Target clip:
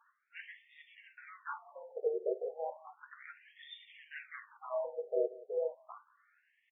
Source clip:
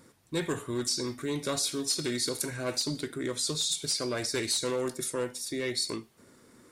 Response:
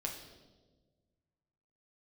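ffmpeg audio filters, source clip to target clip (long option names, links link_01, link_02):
-filter_complex "[0:a]highpass=190,equalizer=frequency=240:width_type=q:width=4:gain=7,equalizer=frequency=390:width_type=q:width=4:gain=6,equalizer=frequency=590:width_type=q:width=4:gain=-4,equalizer=frequency=1800:width_type=q:width=4:gain=-8,equalizer=frequency=2900:width_type=q:width=4:gain=-10,lowpass=frequency=3400:width=0.5412,lowpass=frequency=3400:width=1.3066,asplit=2[link_01][link_02];[link_02]adelay=183,lowpass=frequency=1500:poles=1,volume=-19.5dB,asplit=2[link_03][link_04];[link_04]adelay=183,lowpass=frequency=1500:poles=1,volume=0.25[link_05];[link_03][link_05]amix=inputs=2:normalize=0[link_06];[link_01][link_06]amix=inputs=2:normalize=0,asplit=4[link_07][link_08][link_09][link_10];[link_08]asetrate=22050,aresample=44100,atempo=2,volume=-13dB[link_11];[link_09]asetrate=52444,aresample=44100,atempo=0.840896,volume=-18dB[link_12];[link_10]asetrate=55563,aresample=44100,atempo=0.793701,volume=0dB[link_13];[link_07][link_11][link_12][link_13]amix=inputs=4:normalize=0,asplit=2[link_14][link_15];[1:a]atrim=start_sample=2205,atrim=end_sample=3528,lowpass=2500[link_16];[link_15][link_16]afir=irnorm=-1:irlink=0,volume=-14dB[link_17];[link_14][link_17]amix=inputs=2:normalize=0,afftfilt=real='re*between(b*sr/1024,530*pow(2600/530,0.5+0.5*sin(2*PI*0.33*pts/sr))/1.41,530*pow(2600/530,0.5+0.5*sin(2*PI*0.33*pts/sr))*1.41)':imag='im*between(b*sr/1024,530*pow(2600/530,0.5+0.5*sin(2*PI*0.33*pts/sr))/1.41,530*pow(2600/530,0.5+0.5*sin(2*PI*0.33*pts/sr))*1.41)':win_size=1024:overlap=0.75,volume=-4.5dB"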